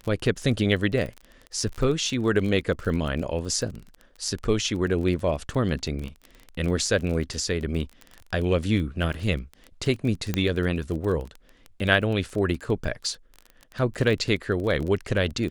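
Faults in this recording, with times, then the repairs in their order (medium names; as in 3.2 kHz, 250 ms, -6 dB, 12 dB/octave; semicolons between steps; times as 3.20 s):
crackle 25 per s -30 dBFS
10.34 s: pop -11 dBFS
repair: de-click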